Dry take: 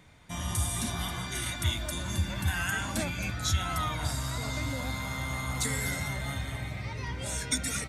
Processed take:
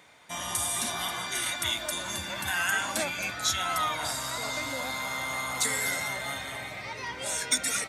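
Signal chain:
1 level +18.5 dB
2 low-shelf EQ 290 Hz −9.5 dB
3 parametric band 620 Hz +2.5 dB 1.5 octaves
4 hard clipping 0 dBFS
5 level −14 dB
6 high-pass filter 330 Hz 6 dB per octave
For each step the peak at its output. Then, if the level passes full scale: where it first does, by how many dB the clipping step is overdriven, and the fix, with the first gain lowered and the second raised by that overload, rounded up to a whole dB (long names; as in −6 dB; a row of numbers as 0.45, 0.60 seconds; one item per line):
+5.0, +4.0, +4.0, 0.0, −14.0, −13.0 dBFS
step 1, 4.0 dB
step 1 +14.5 dB, step 5 −10 dB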